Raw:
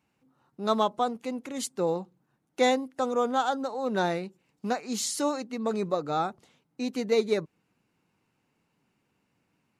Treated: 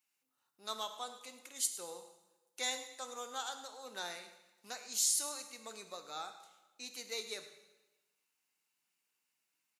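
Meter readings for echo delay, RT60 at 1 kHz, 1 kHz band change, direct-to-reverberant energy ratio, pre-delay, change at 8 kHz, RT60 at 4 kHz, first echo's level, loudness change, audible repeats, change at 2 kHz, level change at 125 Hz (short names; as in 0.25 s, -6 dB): 0.106 s, 1.1 s, -16.5 dB, 7.0 dB, 6 ms, +2.0 dB, 1.0 s, -15.0 dB, -10.0 dB, 1, -10.0 dB, under -25 dB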